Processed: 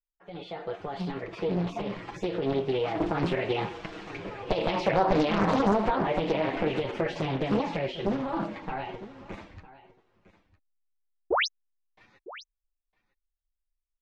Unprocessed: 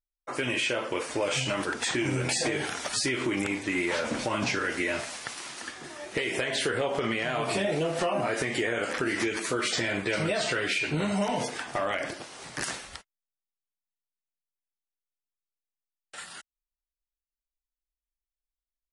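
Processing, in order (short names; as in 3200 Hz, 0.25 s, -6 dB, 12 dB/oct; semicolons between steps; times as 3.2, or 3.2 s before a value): Doppler pass-by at 6.99, 5 m/s, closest 5.3 m; tilt -3.5 dB/oct; AGC gain up to 16 dB; painted sound rise, 15.26–15.49, 240–5000 Hz -13 dBFS; chorus voices 6, 0.18 Hz, delay 11 ms, depth 3.5 ms; speed mistake 33 rpm record played at 45 rpm; air absorption 170 m; echo 0.956 s -18 dB; Doppler distortion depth 0.82 ms; gain -6.5 dB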